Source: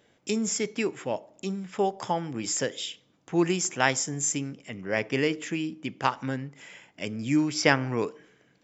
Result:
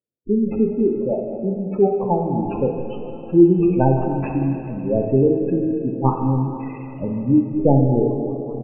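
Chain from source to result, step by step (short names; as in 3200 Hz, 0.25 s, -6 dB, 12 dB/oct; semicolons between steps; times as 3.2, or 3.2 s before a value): tracing distortion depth 0.43 ms; bell 2600 Hz +10.5 dB 0.23 oct; gate -53 dBFS, range -38 dB; tilt shelf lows +8 dB, about 1400 Hz; de-hum 154.6 Hz, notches 20; frequency-shifting echo 0.205 s, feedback 59%, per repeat +98 Hz, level -21.5 dB; spectral gate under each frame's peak -10 dB strong; on a send at -2 dB: reverb RT60 3.1 s, pre-delay 13 ms; on the sum: gain +2.5 dB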